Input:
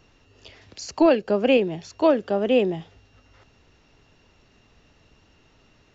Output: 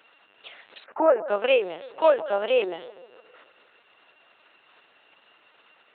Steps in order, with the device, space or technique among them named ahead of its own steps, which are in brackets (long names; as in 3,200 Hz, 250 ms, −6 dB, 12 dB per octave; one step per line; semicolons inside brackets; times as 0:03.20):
0:00.84–0:01.29: inverse Chebyshev low-pass filter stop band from 4,400 Hz, stop band 50 dB
delay with a band-pass on its return 153 ms, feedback 53%, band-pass 520 Hz, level −16 dB
talking toy (linear-prediction vocoder at 8 kHz pitch kept; high-pass filter 690 Hz 12 dB per octave; parametric band 1,400 Hz +4 dB 0.38 octaves)
level +4.5 dB